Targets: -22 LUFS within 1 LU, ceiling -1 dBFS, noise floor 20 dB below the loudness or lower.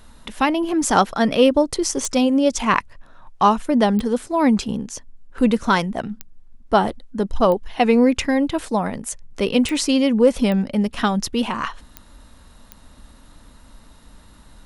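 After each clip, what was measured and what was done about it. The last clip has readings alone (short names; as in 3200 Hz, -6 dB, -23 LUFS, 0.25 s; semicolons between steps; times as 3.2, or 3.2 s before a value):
clicks 8; loudness -19.5 LUFS; peak -1.0 dBFS; loudness target -22.0 LUFS
-> de-click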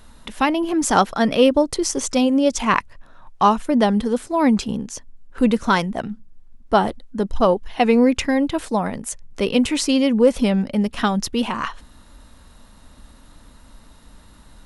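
clicks 0; loudness -19.5 LUFS; peak -1.0 dBFS; loudness target -22.0 LUFS
-> gain -2.5 dB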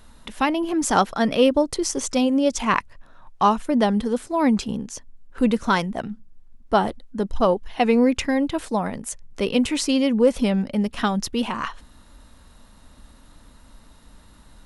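loudness -22.0 LUFS; peak -3.5 dBFS; noise floor -50 dBFS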